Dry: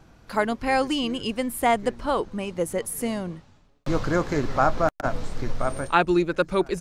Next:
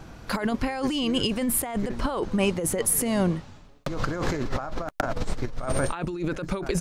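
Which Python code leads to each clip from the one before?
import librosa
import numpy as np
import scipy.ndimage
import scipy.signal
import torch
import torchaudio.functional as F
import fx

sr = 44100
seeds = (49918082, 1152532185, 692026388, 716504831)

y = fx.over_compress(x, sr, threshold_db=-30.0, ratio=-1.0)
y = y * 10.0 ** (3.5 / 20.0)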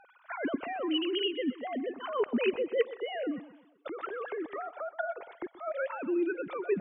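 y = fx.sine_speech(x, sr)
y = fx.echo_feedback(y, sr, ms=126, feedback_pct=41, wet_db=-16.0)
y = y * 10.0 ** (-7.0 / 20.0)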